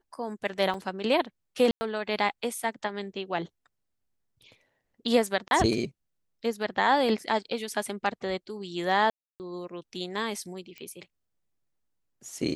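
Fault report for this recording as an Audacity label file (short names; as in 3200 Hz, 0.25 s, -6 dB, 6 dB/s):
0.740000	0.740000	gap 3.5 ms
1.710000	1.810000	gap 0.1 s
5.480000	5.510000	gap 31 ms
9.100000	9.400000	gap 0.299 s
10.780000	10.780000	pop -27 dBFS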